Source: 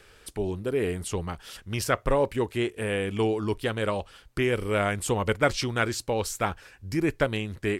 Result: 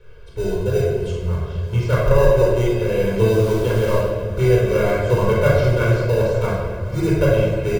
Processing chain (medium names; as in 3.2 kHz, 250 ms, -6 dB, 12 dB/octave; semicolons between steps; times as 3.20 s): tape spacing loss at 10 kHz 29 dB; in parallel at -7.5 dB: sample-rate reducer 1.1 kHz, jitter 0%; on the sum: comb 1.9 ms, depth 93%; 0.81–1.41 s: compressor with a negative ratio -31 dBFS, ratio -0.5; 3.32–3.97 s: added noise pink -41 dBFS; band-stop 1.8 kHz, Q 6.9; on a send: shuffle delay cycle 898 ms, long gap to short 1.5:1, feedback 69%, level -20 dB; on the sum: simulated room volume 1500 m³, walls mixed, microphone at 4.4 m; trim -3 dB